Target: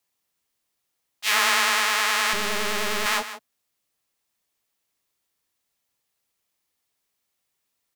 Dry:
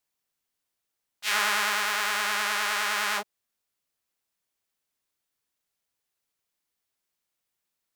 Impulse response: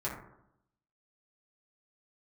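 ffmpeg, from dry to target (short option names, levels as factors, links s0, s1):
-filter_complex "[0:a]afreqshift=23,asettb=1/sr,asplit=3[s0][s1][s2];[s0]atrim=end=2.334[s3];[s1]atrim=start=2.33:end=3.06,asetpts=PTS-STARTPTS,afade=t=in:d=0.004:c=qsin,afade=t=out:st=0.726:d=0.004:c=qsin,aeval=exprs='max(val(0),0)':c=same[s4];[s2]atrim=start=3.056[s5];[s3][s4]acrossfade=d=0.004:c1=hsin:c2=qsin[s6];[s6][s5]acrossfade=d=0.004:c1=qsin:c2=hsin,bandreject=f=1500:w=15,asplit=2[s7][s8];[s8]aecho=0:1:159:0.237[s9];[s7][s9]amix=inputs=2:normalize=0,volume=1.78"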